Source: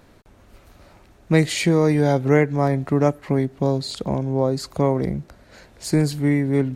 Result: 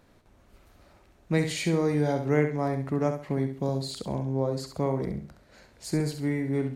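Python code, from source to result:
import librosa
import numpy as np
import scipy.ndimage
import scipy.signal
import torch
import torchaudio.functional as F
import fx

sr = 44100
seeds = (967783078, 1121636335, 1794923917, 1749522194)

y = fx.high_shelf(x, sr, hz=9200.0, db=9.0, at=(3.53, 4.16))
y = fx.echo_feedback(y, sr, ms=67, feedback_pct=29, wet_db=-7.5)
y = y * librosa.db_to_amplitude(-8.5)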